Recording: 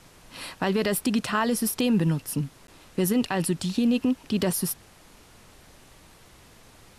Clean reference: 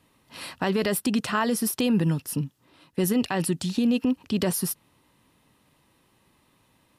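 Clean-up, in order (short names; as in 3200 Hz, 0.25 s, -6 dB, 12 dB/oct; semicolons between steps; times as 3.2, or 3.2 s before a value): interpolate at 2.67, 12 ms; noise print and reduce 12 dB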